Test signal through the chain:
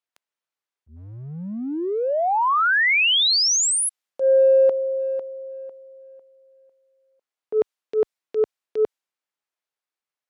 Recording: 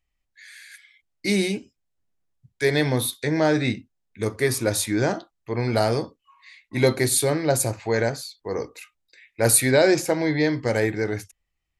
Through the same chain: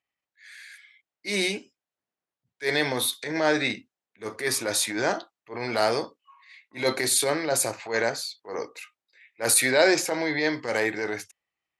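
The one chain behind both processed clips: transient shaper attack -11 dB, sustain +1 dB; weighting filter A; mismatched tape noise reduction decoder only; gain +2 dB

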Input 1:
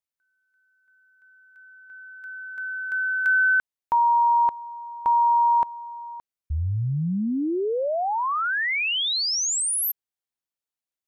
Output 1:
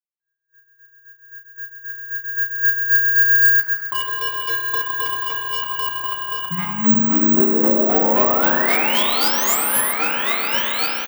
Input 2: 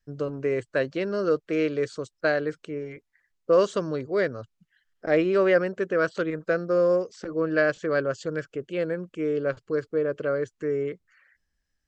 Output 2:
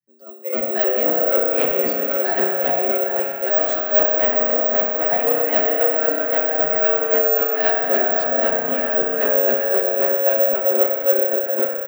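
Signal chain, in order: repeats that get brighter 0.407 s, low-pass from 750 Hz, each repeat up 1 oct, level 0 dB; AGC gain up to 13 dB; chopper 3.8 Hz, depth 65%, duty 25%; soft clip -16.5 dBFS; frequency shift +100 Hz; doubler 13 ms -2 dB; spring tank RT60 2.9 s, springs 31 ms, chirp 50 ms, DRR -0.5 dB; spectral noise reduction 13 dB; careless resampling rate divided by 2×, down none, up zero stuff; gain -3.5 dB

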